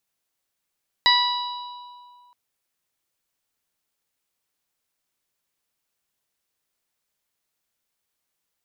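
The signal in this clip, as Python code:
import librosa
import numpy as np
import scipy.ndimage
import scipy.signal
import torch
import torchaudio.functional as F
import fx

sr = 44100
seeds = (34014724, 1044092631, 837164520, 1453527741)

y = fx.additive(sr, length_s=1.27, hz=979.0, level_db=-18, upper_db=(0, -10.0, 3, -4.0), decay_s=2.18, upper_decays_s=(0.68, 1.51, 1.4, 1.08))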